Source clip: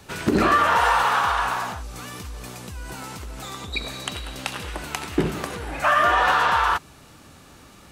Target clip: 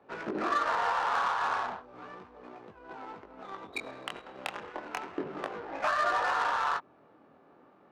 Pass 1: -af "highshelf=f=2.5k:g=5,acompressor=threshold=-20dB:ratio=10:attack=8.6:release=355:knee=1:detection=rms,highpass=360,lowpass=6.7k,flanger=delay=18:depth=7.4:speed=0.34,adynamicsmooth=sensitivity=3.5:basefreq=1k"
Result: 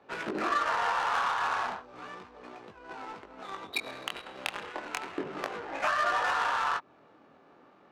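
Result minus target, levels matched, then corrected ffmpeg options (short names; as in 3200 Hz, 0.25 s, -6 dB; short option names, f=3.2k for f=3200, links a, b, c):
4000 Hz band +3.5 dB
-af "highshelf=f=2.5k:g=-5.5,acompressor=threshold=-20dB:ratio=10:attack=8.6:release=355:knee=1:detection=rms,highpass=360,lowpass=6.7k,flanger=delay=18:depth=7.4:speed=0.34,adynamicsmooth=sensitivity=3.5:basefreq=1k"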